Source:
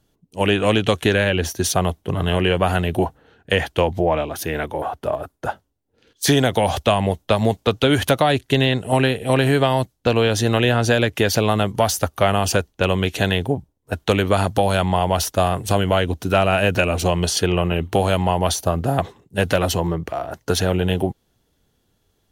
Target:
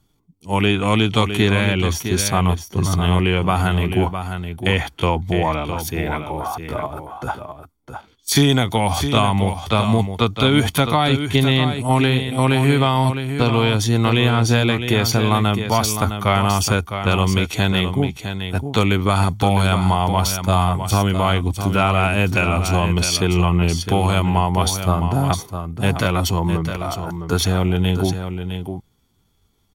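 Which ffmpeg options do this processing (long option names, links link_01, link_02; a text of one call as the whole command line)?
ffmpeg -i in.wav -af "atempo=0.75,aecho=1:1:0.9:0.53,aecho=1:1:659:0.376" out.wav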